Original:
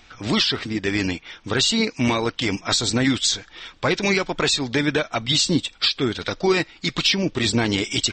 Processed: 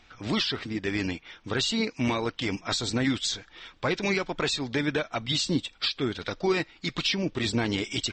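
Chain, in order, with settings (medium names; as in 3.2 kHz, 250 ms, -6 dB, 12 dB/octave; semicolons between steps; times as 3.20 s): treble shelf 6.5 kHz -8 dB; trim -6 dB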